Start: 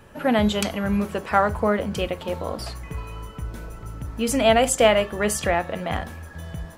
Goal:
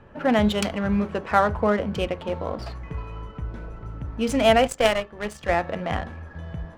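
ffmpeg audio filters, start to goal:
-filter_complex "[0:a]adynamicsmooth=sensitivity=3.5:basefreq=2.4k,asettb=1/sr,asplit=3[a][b][c];[a]atrim=end=4.674[d];[b]atrim=start=4.67:end=5.49,asetpts=PTS-STARTPTS,afade=t=in:d=0.004:c=qsin,afade=t=out:st=0.816:d=0.004:c=qsin,aeval=exprs='0.631*(cos(1*acos(clip(val(0)/0.631,-1,1)))-cos(1*PI/2))+0.158*(cos(3*acos(clip(val(0)/0.631,-1,1)))-cos(3*PI/2))+0.0891*(cos(5*acos(clip(val(0)/0.631,-1,1)))-cos(5*PI/2))+0.0631*(cos(7*acos(clip(val(0)/0.631,-1,1)))-cos(7*PI/2))+0.0158*(cos(8*acos(clip(val(0)/0.631,-1,1)))-cos(8*PI/2))':c=same[e];[c]atrim=start=5.486[f];[d][e]acrossfade=d=0.004:c1=hsin:c2=qsin[g];[g][f]acrossfade=d=0.004:c1=qsin:c2=hsin"

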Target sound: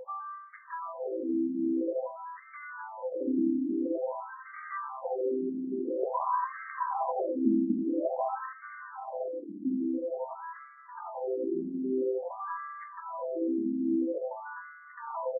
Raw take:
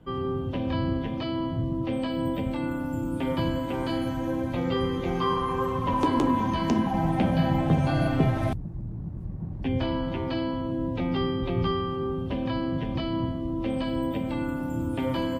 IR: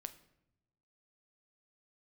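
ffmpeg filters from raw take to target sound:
-filter_complex "[0:a]aeval=exprs='val(0)+0.0126*sin(2*PI*510*n/s)':c=same,asplit=2[a][b];[b]adelay=751,lowpass=f=2k:p=1,volume=-5dB,asplit=2[c][d];[d]adelay=751,lowpass=f=2k:p=1,volume=0.38,asplit=2[e][f];[f]adelay=751,lowpass=f=2k:p=1,volume=0.38,asplit=2[g][h];[h]adelay=751,lowpass=f=2k:p=1,volume=0.38,asplit=2[i][j];[j]adelay=751,lowpass=f=2k:p=1,volume=0.38[k];[a][c][e][g][i][k]amix=inputs=6:normalize=0,afftfilt=real='re*between(b*sr/1024,260*pow(1600/260,0.5+0.5*sin(2*PI*0.49*pts/sr))/1.41,260*pow(1600/260,0.5+0.5*sin(2*PI*0.49*pts/sr))*1.41)':imag='im*between(b*sr/1024,260*pow(1600/260,0.5+0.5*sin(2*PI*0.49*pts/sr))/1.41,260*pow(1600/260,0.5+0.5*sin(2*PI*0.49*pts/sr))*1.41)':win_size=1024:overlap=0.75"

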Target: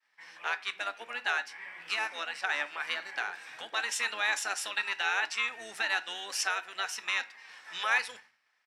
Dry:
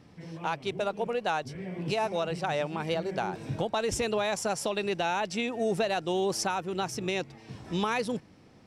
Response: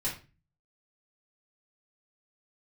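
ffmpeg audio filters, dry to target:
-filter_complex "[0:a]highpass=f=1.7k:t=q:w=3,asplit=2[a][b];[b]asetrate=22050,aresample=44100,atempo=2,volume=-11dB[c];[a][c]amix=inputs=2:normalize=0,agate=range=-33dB:threshold=-52dB:ratio=3:detection=peak,asplit=2[d][e];[1:a]atrim=start_sample=2205[f];[e][f]afir=irnorm=-1:irlink=0,volume=-14dB[g];[d][g]amix=inputs=2:normalize=0,volume=-1.5dB"

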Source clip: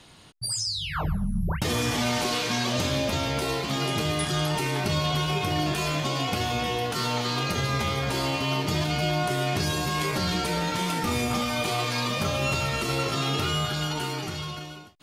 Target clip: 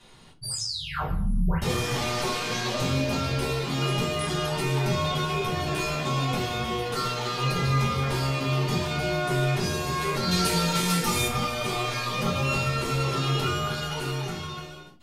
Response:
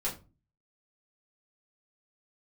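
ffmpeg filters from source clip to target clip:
-filter_complex "[0:a]asettb=1/sr,asplit=3[a][b][c];[a]atrim=end=10.314[d];[b]atrim=start=10.31:end=11.28,asetpts=PTS-STARTPTS,afade=t=in:d=0.004:c=qsin,afade=t=out:st=0.966:d=0.004:c=qsin,highshelf=f=3.4k:g=11.5[e];[c]atrim=start=11.276[f];[d][e]acrossfade=d=0.004:c1=hsin:c2=qsin[g];[g][f]acrossfade=d=0.004:c1=qsin:c2=hsin[h];[1:a]atrim=start_sample=2205,atrim=end_sample=6174[i];[h][i]afir=irnorm=-1:irlink=0,volume=-5dB"

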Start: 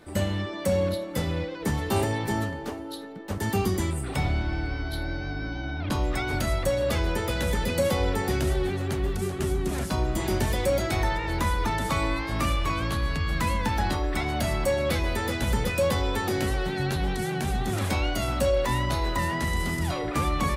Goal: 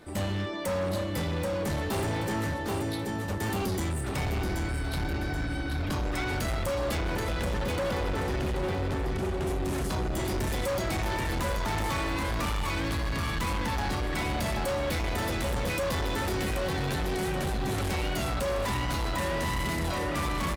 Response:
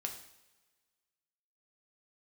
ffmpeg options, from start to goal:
-filter_complex "[0:a]asettb=1/sr,asplit=3[a][b][c];[a]atrim=end=6.984[d];[b]atrim=start=6.98:end=9.47,asetpts=PTS-STARTPTS,afade=t=in:d=0.004:c=qsin,afade=t=out:st=2.486:d=0.004:c=qsin,lowpass=f=2.9k:p=1[e];[c]atrim=start=9.466[f];[d][e]acrossfade=d=0.004:c1=hsin:c2=qsin[g];[g][f]acrossfade=d=0.004:c1=qsin:c2=hsin,aecho=1:1:780|1560|2340|3120|3900:0.531|0.202|0.0767|0.0291|0.0111,asoftclip=type=hard:threshold=-27dB"

